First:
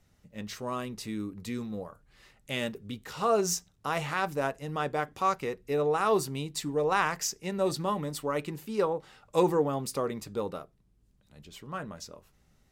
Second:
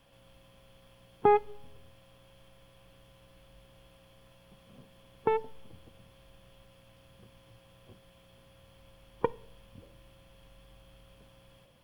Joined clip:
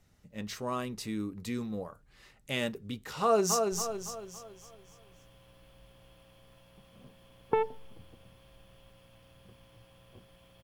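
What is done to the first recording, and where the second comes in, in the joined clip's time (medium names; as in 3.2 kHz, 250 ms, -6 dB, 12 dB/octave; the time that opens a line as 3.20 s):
first
3.21–3.72 s: echo throw 280 ms, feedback 45%, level -4.5 dB
3.72 s: go over to second from 1.46 s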